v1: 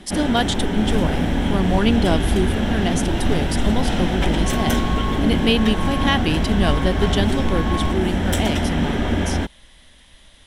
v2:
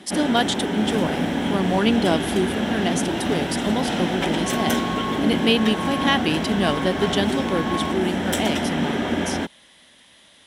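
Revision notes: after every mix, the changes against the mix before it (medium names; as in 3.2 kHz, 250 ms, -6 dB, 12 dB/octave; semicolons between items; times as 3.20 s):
master: add high-pass 180 Hz 12 dB/octave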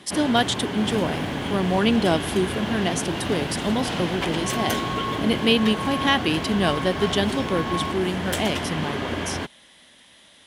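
reverb: off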